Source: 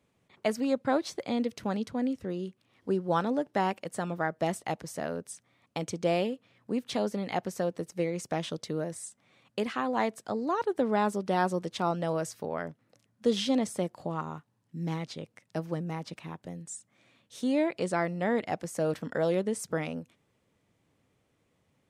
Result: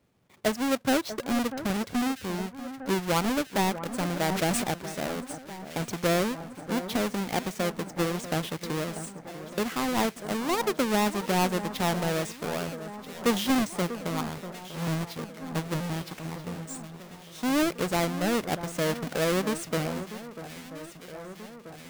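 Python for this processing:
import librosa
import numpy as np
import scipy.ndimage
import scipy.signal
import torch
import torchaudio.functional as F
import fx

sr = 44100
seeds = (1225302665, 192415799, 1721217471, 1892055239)

y = fx.halfwave_hold(x, sr)
y = fx.echo_alternate(y, sr, ms=642, hz=1800.0, feedback_pct=79, wet_db=-12)
y = fx.sustainer(y, sr, db_per_s=26.0, at=(3.92, 4.64))
y = F.gain(torch.from_numpy(y), -2.0).numpy()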